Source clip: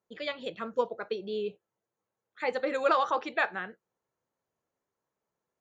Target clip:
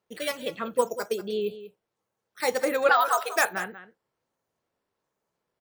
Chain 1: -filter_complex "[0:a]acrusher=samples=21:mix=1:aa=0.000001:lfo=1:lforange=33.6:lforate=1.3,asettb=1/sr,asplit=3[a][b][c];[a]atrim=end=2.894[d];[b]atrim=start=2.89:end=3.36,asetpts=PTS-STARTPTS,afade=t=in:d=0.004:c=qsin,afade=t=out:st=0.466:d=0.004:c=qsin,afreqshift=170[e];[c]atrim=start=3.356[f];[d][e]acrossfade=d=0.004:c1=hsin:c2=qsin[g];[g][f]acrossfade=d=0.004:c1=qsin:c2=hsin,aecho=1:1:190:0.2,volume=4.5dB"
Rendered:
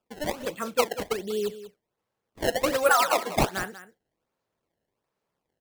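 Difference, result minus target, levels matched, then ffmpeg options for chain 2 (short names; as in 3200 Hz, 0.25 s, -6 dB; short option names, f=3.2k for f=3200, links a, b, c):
decimation with a swept rate: distortion +14 dB
-filter_complex "[0:a]acrusher=samples=4:mix=1:aa=0.000001:lfo=1:lforange=6.4:lforate=1.3,asettb=1/sr,asplit=3[a][b][c];[a]atrim=end=2.894[d];[b]atrim=start=2.89:end=3.36,asetpts=PTS-STARTPTS,afade=t=in:d=0.004:c=qsin,afade=t=out:st=0.466:d=0.004:c=qsin,afreqshift=170[e];[c]atrim=start=3.356[f];[d][e]acrossfade=d=0.004:c1=hsin:c2=qsin[g];[g][f]acrossfade=d=0.004:c1=qsin:c2=hsin,aecho=1:1:190:0.2,volume=4.5dB"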